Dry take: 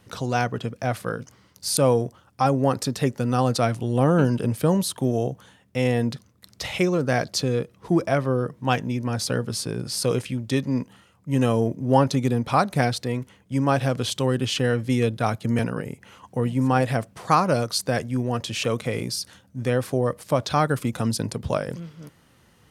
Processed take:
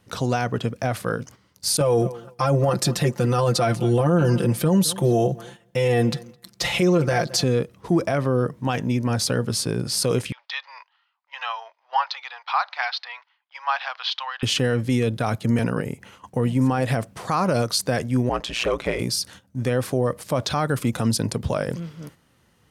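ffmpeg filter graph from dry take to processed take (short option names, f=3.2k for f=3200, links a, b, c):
-filter_complex "[0:a]asettb=1/sr,asplit=3[a][b][c];[a]atrim=end=1.804[d];[b]atrim=start=1.8:end=7.44,asetpts=PTS-STARTPTS,afade=t=in:d=0.004:c=qsin,afade=t=out:st=5.636:d=0.004:c=qsin,aecho=1:1:5.8:0.95,atrim=end_sample=248724,asplit=2[e][f];[f]adelay=213,lowpass=f=3.4k:p=1,volume=-23.5dB,asplit=2[g][h];[h]adelay=213,lowpass=f=3.4k:p=1,volume=0.2[i];[e][g][i]amix=inputs=3:normalize=0,atrim=end_sample=248724[j];[c]atrim=start=7.436[k];[d][j]acrossfade=d=0.004:c1=hsin:c2=qsin[l];[l][k]acrossfade=d=0.004:c1=qsin:c2=hsin,asettb=1/sr,asplit=3[m][n][o];[m]atrim=end=10.324[p];[n]atrim=start=10.32:end=14.43,asetpts=PTS-STARTPTS,afade=t=in:d=0.004:c=qsin,afade=t=out:st=4.106:d=0.004:c=qsin,agate=range=-7dB:threshold=-47dB:ratio=16:release=100:detection=peak,asuperpass=centerf=2000:order=12:qfactor=0.5[q];[o]atrim=start=14.426[r];[p][q]acrossfade=d=0.004:c1=hsin:c2=qsin[s];[s][r]acrossfade=d=0.004:c1=qsin:c2=hsin,asettb=1/sr,asplit=3[t][u][v];[t]atrim=end=18.294[w];[u]atrim=start=18.29:end=18.99,asetpts=PTS-STARTPTS,afade=t=in:d=0.004:c=qsin,afade=t=out:st=0.696:d=0.004:c=qsin,asplit=2[x][y];[y]highpass=f=720:p=1,volume=12dB,asoftclip=type=tanh:threshold=-11.5dB[z];[x][z]amix=inputs=2:normalize=0,lowpass=f=2.1k:p=1,volume=-6dB,aeval=exprs='val(0)*sin(2*PI*59*n/s)':c=same[aa];[v]atrim=start=18.986[ab];[w][aa]acrossfade=d=0.004:c1=hsin:c2=qsin[ac];[ac][ab]acrossfade=d=0.004:c1=qsin:c2=hsin,agate=range=-8dB:threshold=-47dB:ratio=16:detection=peak,alimiter=limit=-15dB:level=0:latency=1:release=44,volume=4dB"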